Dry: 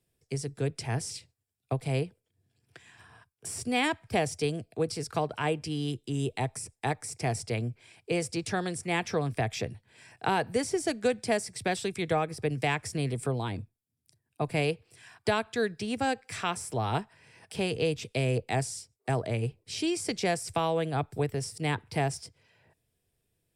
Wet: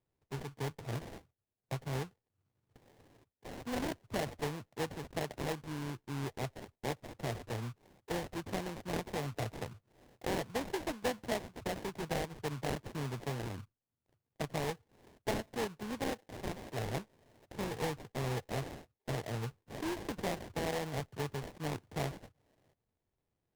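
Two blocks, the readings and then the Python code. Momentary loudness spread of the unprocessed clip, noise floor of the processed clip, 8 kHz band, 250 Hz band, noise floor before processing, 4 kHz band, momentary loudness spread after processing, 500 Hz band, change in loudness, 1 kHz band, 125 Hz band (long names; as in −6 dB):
8 LU, below −85 dBFS, −11.0 dB, −7.5 dB, −81 dBFS, −8.5 dB, 8 LU, −8.5 dB, −8.5 dB, −9.0 dB, −8.0 dB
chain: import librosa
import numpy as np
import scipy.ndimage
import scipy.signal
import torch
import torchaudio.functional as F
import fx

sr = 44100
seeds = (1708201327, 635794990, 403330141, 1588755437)

y = fx.sample_hold(x, sr, seeds[0], rate_hz=1300.0, jitter_pct=20)
y = fx.doppler_dist(y, sr, depth_ms=0.15)
y = F.gain(torch.from_numpy(y), -8.0).numpy()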